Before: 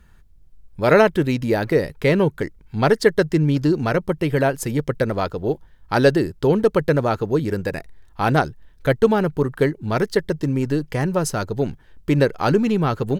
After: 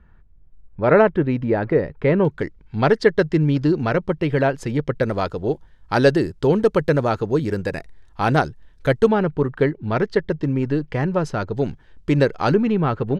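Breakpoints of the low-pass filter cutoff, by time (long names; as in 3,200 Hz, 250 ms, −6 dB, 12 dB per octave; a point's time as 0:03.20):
1,800 Hz
from 0:02.25 4,300 Hz
from 0:05.03 8,400 Hz
from 0:09.07 3,300 Hz
from 0:11.53 6,600 Hz
from 0:12.54 2,700 Hz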